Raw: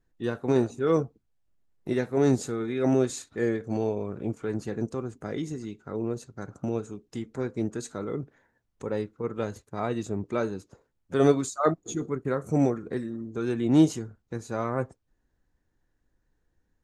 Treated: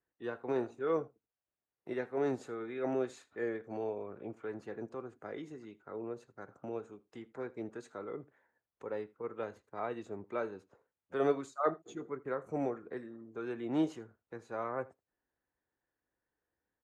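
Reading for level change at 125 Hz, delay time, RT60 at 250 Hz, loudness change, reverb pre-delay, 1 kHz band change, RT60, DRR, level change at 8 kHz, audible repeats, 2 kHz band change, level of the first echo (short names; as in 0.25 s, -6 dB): -18.5 dB, 80 ms, none, -10.0 dB, none, -6.5 dB, none, none, under -20 dB, 1, -7.0 dB, -22.5 dB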